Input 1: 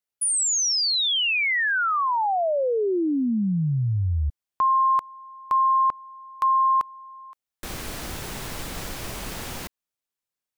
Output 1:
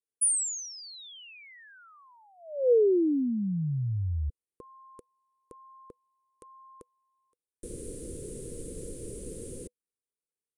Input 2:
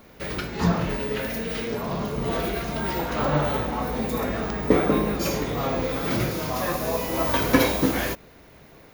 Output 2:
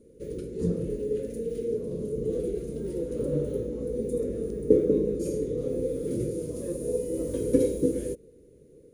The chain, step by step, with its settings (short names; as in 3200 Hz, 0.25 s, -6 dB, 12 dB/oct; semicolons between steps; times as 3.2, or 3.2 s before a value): EQ curve 220 Hz 0 dB, 490 Hz +10 dB, 740 Hz -30 dB, 5400 Hz -14 dB, 9700 Hz +7 dB, 14000 Hz -28 dB; gain -6.5 dB